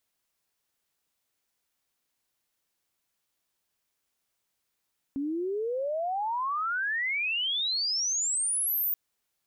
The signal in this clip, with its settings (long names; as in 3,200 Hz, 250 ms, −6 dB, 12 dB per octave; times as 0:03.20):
glide logarithmic 270 Hz → 15,000 Hz −28 dBFS → −25 dBFS 3.78 s